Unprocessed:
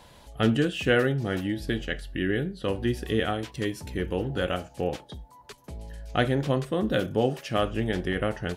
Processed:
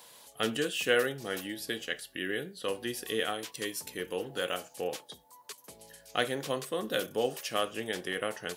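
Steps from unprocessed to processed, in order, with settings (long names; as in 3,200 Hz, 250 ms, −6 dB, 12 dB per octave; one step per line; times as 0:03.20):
high-pass filter 110 Hz 12 dB per octave
RIAA equalisation recording
hollow resonant body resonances 470/1,100 Hz, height 6 dB
level −5 dB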